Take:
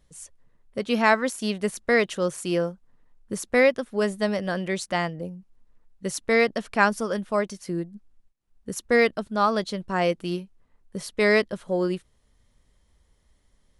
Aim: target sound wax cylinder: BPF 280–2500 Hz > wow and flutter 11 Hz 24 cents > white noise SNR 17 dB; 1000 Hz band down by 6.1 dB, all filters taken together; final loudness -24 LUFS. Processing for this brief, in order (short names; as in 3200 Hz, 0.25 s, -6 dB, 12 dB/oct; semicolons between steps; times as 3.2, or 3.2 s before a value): BPF 280–2500 Hz; bell 1000 Hz -8 dB; wow and flutter 11 Hz 24 cents; white noise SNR 17 dB; gain +4 dB